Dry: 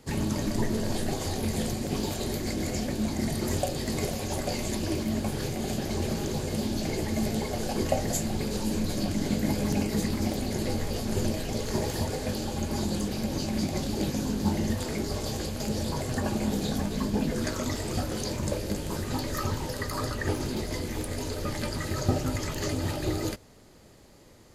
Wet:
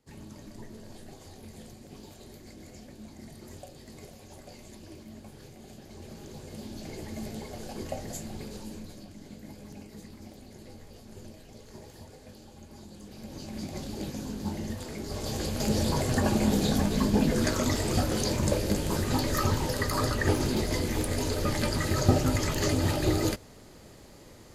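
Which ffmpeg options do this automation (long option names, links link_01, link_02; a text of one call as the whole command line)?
ffmpeg -i in.wav -af "volume=12.5dB,afade=type=in:start_time=5.87:duration=1.22:silence=0.398107,afade=type=out:start_time=8.42:duration=0.64:silence=0.354813,afade=type=in:start_time=12.97:duration=0.83:silence=0.266073,afade=type=in:start_time=15.01:duration=0.7:silence=0.298538" out.wav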